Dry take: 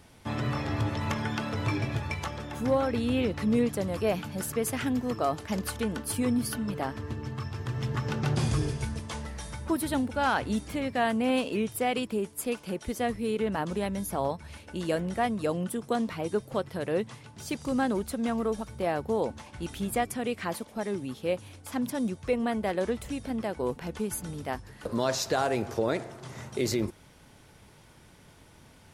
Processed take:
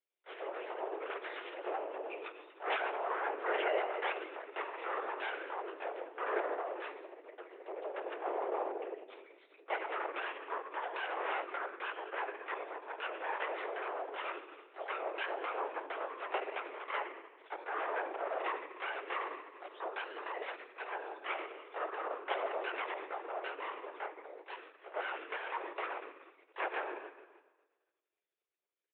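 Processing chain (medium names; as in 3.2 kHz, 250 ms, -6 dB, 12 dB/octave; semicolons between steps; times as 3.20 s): expander on every frequency bin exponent 2; band-stop 870 Hz, Q 12; in parallel at +2 dB: compression, threshold -39 dBFS, peak gain reduction 15 dB; on the sum: low-pass that closes with the level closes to 530 Hz, closed at -27.5 dBFS; Chebyshev shaper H 8 -8 dB, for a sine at -18.5 dBFS; half-wave rectifier; doubling 17 ms -11 dB; on a send at -7 dB: reverberation RT60 1.3 s, pre-delay 7 ms; on the sum: LPC vocoder at 8 kHz whisper; mistuned SSB +180 Hz 210–3000 Hz; trim -2 dB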